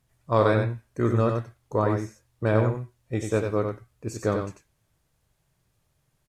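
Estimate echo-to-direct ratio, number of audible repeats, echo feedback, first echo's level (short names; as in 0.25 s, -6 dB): -5.5 dB, 1, no steady repeat, -5.5 dB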